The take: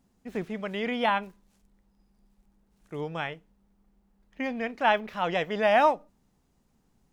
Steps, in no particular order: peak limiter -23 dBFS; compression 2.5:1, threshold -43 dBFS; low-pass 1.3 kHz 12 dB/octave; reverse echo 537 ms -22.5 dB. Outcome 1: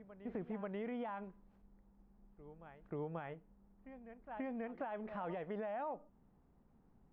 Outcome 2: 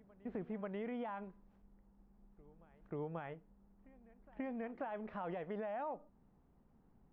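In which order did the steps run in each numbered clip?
reverse echo > peak limiter > compression > low-pass; peak limiter > compression > low-pass > reverse echo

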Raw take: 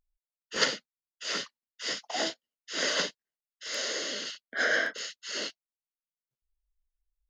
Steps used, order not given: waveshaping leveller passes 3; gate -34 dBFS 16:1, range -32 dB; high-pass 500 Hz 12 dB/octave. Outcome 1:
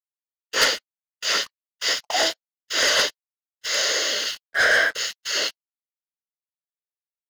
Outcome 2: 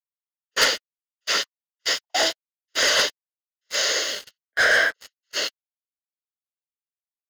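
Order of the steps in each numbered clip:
high-pass > waveshaping leveller > gate; high-pass > gate > waveshaping leveller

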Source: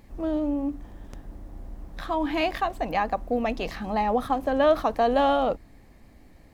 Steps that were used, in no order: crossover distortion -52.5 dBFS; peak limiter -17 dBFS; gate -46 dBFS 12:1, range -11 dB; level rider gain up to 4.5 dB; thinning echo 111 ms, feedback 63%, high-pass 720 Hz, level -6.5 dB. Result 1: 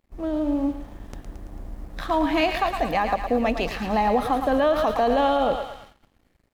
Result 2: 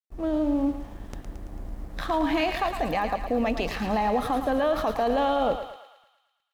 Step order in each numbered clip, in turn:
thinning echo > crossover distortion > peak limiter > level rider > gate; gate > crossover distortion > level rider > peak limiter > thinning echo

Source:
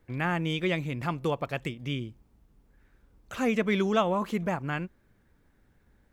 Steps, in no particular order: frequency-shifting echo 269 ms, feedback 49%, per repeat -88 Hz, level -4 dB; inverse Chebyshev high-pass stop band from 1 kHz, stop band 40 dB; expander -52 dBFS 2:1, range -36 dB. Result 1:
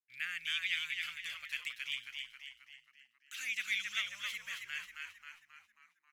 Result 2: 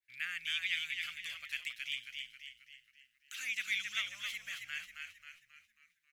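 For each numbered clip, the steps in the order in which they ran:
inverse Chebyshev high-pass > expander > frequency-shifting echo; expander > frequency-shifting echo > inverse Chebyshev high-pass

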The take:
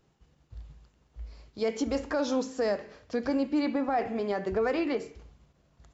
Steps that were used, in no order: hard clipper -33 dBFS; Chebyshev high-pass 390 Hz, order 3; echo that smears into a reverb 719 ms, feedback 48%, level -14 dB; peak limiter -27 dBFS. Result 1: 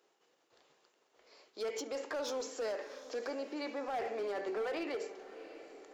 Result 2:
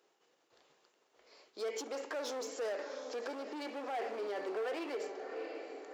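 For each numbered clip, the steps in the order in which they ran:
peak limiter > Chebyshev high-pass > hard clipper > echo that smears into a reverb; echo that smears into a reverb > peak limiter > hard clipper > Chebyshev high-pass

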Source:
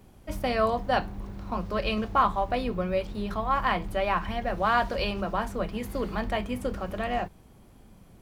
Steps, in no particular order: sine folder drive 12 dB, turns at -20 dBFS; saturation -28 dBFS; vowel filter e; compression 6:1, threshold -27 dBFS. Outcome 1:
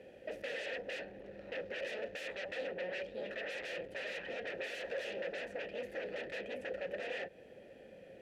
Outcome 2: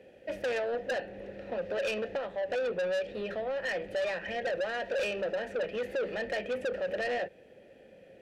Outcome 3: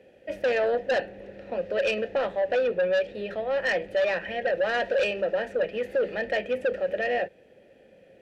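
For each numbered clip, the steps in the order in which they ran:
sine folder > compression > vowel filter > saturation; compression > vowel filter > sine folder > saturation; vowel filter > saturation > compression > sine folder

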